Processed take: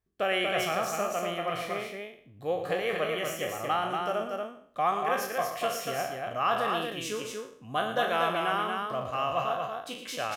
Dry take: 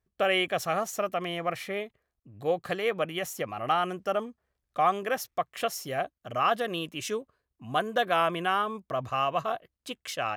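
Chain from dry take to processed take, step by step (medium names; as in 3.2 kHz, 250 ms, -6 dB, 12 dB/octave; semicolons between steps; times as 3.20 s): spectral sustain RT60 0.52 s; loudspeakers at several distances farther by 39 m -10 dB, 81 m -4 dB; trim -4 dB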